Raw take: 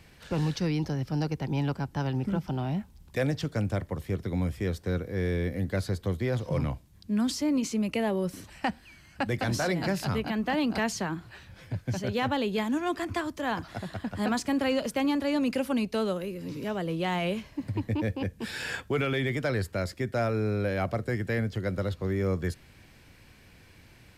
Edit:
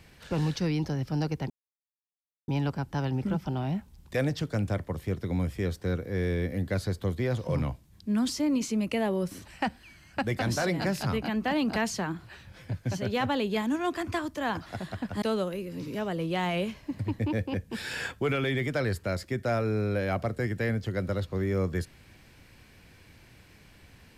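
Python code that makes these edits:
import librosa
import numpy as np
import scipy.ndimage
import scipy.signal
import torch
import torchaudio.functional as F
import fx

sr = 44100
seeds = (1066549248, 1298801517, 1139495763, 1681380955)

y = fx.edit(x, sr, fx.insert_silence(at_s=1.5, length_s=0.98),
    fx.cut(start_s=14.24, length_s=1.67), tone=tone)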